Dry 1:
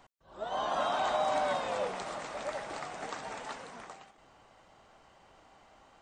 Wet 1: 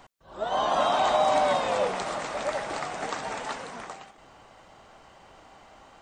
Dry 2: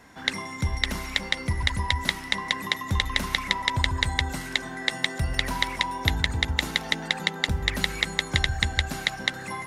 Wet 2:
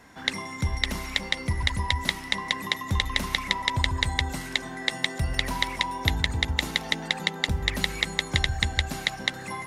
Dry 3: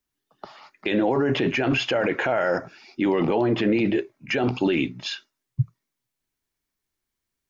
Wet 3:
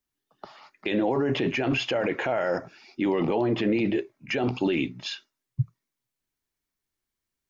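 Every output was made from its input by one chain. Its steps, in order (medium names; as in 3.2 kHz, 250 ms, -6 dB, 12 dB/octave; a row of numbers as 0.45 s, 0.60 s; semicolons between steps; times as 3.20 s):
dynamic bell 1.5 kHz, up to -4 dB, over -43 dBFS, Q 3.6; normalise loudness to -27 LUFS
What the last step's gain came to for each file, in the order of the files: +7.5 dB, -0.5 dB, -3.0 dB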